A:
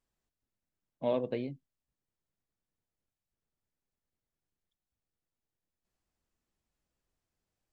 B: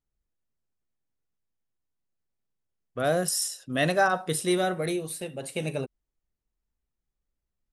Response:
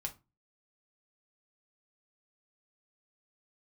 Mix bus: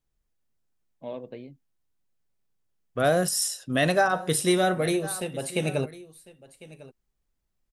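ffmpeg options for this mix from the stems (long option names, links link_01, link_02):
-filter_complex "[0:a]volume=-6dB[link_01];[1:a]volume=3dB,asplit=3[link_02][link_03][link_04];[link_03]volume=-14.5dB[link_05];[link_04]volume=-18.5dB[link_06];[2:a]atrim=start_sample=2205[link_07];[link_05][link_07]afir=irnorm=-1:irlink=0[link_08];[link_06]aecho=0:1:1051:1[link_09];[link_01][link_02][link_08][link_09]amix=inputs=4:normalize=0,alimiter=limit=-12dB:level=0:latency=1:release=223"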